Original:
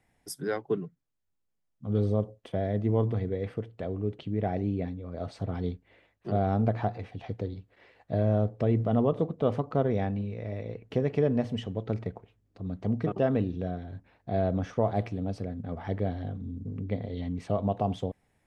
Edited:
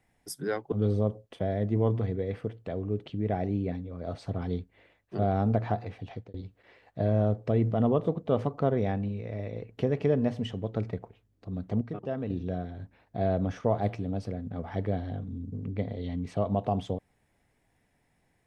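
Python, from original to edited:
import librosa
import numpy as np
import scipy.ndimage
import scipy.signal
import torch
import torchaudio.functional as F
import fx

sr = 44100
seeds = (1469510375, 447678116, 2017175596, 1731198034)

y = fx.edit(x, sr, fx.cut(start_s=0.72, length_s=1.13),
    fx.fade_out_span(start_s=7.2, length_s=0.27),
    fx.clip_gain(start_s=12.94, length_s=0.49, db=-7.5), tone=tone)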